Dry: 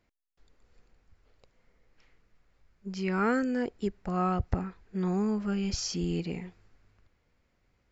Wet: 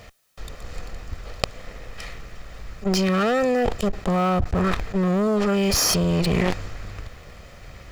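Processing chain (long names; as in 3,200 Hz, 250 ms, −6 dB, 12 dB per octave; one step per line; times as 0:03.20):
lower of the sound and its delayed copy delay 1.6 ms
0:05.27–0:05.91: low-shelf EQ 150 Hz −6 dB
leveller curve on the samples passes 3
envelope flattener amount 100%
level −3.5 dB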